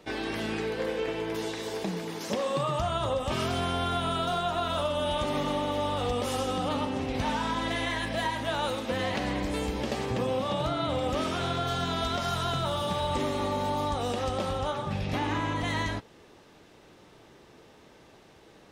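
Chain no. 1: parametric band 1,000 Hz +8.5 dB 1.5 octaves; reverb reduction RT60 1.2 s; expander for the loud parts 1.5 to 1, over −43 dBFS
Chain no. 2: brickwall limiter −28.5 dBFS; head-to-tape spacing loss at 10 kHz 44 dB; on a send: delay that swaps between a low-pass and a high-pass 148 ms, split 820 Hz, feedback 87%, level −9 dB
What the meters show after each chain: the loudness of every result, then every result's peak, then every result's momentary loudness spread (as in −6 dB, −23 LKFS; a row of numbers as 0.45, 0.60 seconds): −31.5, −39.0 LKFS; −14.0, −26.5 dBFS; 9, 11 LU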